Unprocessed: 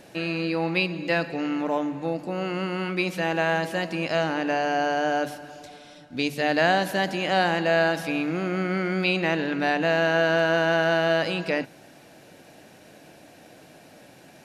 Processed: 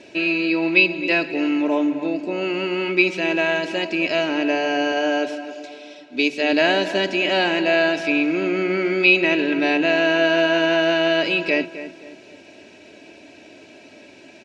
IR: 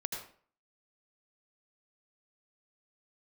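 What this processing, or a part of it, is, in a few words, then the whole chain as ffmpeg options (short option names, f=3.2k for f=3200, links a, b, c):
car door speaker: -filter_complex "[0:a]asettb=1/sr,asplit=3[a][b][c];[a]atrim=end=4.924[d];[b]atrim=start=4.92:end=6.53,asetpts=PTS-STARTPTS,afade=t=in:d=0.004:c=qsin,afade=t=out:st=1.606:d=0.004:c=qsin,highpass=220[e];[c]atrim=start=6.526[f];[d][e]acrossfade=d=0.004:c1=hsin:c2=qsin[g];[g][f]acrossfade=d=0.004:c1=qsin:c2=hsin,highpass=85,equalizer=f=130:t=q:w=4:g=-5,equalizer=f=430:t=q:w=4:g=6,equalizer=f=720:t=q:w=4:g=-5,equalizer=f=1.2k:t=q:w=4:g=-7,equalizer=f=1.8k:t=q:w=4:g=-3,equalizer=f=2.5k:t=q:w=4:g=9,lowpass=f=6.9k:w=0.5412,lowpass=f=6.9k:w=1.3066,aecho=1:1:3.1:0.61,asplit=2[h][i];[i]adelay=262,lowpass=f=2k:p=1,volume=-12dB,asplit=2[j][k];[k]adelay=262,lowpass=f=2k:p=1,volume=0.38,asplit=2[l][m];[m]adelay=262,lowpass=f=2k:p=1,volume=0.38,asplit=2[n][o];[o]adelay=262,lowpass=f=2k:p=1,volume=0.38[p];[h][j][l][n][p]amix=inputs=5:normalize=0,volume=2.5dB"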